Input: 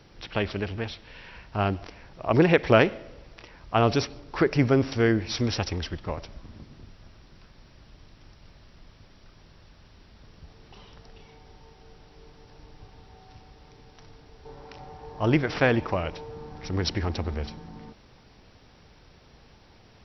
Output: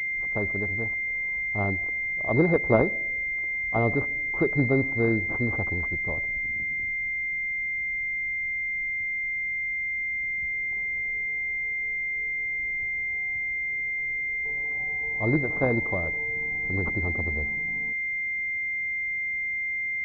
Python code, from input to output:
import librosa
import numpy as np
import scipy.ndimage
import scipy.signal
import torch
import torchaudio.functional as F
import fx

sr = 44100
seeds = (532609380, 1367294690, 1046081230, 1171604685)

y = fx.wiener(x, sr, points=15)
y = fx.pwm(y, sr, carrier_hz=2100.0)
y = y * librosa.db_to_amplitude(-2.0)